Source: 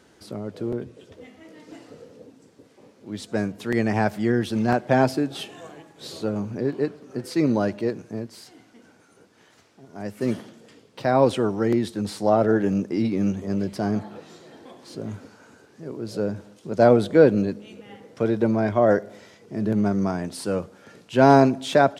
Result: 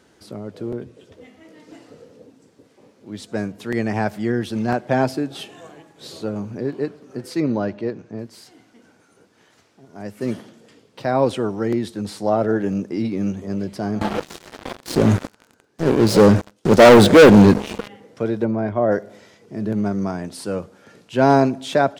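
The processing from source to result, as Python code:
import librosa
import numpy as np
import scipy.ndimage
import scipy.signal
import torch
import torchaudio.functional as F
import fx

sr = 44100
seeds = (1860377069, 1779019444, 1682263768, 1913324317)

y = fx.air_absorb(x, sr, metres=120.0, at=(7.4, 8.19))
y = fx.leveller(y, sr, passes=5, at=(14.01, 17.88))
y = fx.lowpass(y, sr, hz=1600.0, slope=6, at=(18.44, 18.91), fade=0.02)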